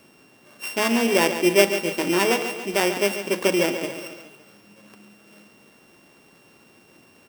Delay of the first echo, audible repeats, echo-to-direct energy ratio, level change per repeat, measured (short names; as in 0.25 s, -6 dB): 0.14 s, 4, -8.5 dB, -5.0 dB